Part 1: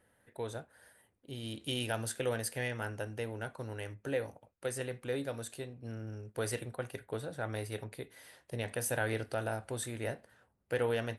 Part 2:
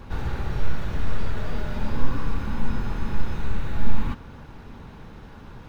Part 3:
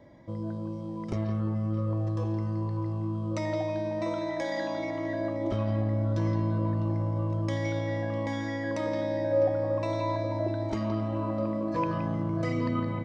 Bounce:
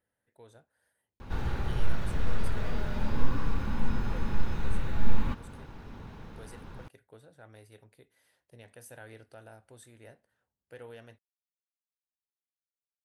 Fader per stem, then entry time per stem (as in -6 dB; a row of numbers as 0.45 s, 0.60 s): -15.0 dB, -3.5 dB, mute; 0.00 s, 1.20 s, mute